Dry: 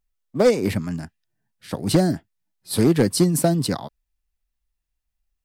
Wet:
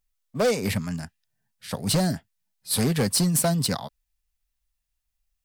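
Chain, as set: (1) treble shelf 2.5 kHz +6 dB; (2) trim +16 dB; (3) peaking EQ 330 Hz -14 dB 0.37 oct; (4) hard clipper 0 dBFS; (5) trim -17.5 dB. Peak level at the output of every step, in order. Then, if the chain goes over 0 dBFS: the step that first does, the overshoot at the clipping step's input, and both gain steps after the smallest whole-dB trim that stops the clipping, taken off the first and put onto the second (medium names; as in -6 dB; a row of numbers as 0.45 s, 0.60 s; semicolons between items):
-6.0 dBFS, +10.0 dBFS, +10.0 dBFS, 0.0 dBFS, -17.5 dBFS; step 2, 10.0 dB; step 2 +6 dB, step 5 -7.5 dB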